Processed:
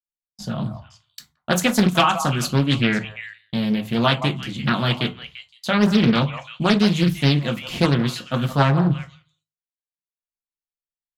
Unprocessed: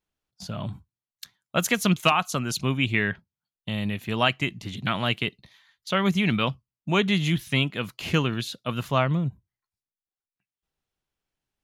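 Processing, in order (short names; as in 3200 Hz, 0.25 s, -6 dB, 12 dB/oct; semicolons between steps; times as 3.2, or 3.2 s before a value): bell 2500 Hz -2 dB; expander -47 dBFS; low shelf 170 Hz +5 dB; notches 50/100/150 Hz; delay with a stepping band-pass 0.179 s, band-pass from 820 Hz, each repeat 1.4 oct, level -7.5 dB; speed mistake 24 fps film run at 25 fps; on a send at -5 dB: reverb RT60 0.25 s, pre-delay 3 ms; on the sum: Doppler distortion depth 0.53 ms; gain +2.5 dB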